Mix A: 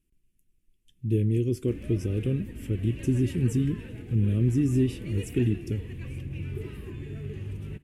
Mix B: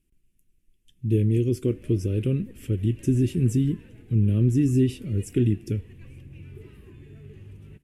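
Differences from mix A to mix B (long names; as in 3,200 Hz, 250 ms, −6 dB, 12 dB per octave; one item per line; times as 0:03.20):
speech +3.0 dB
background −8.5 dB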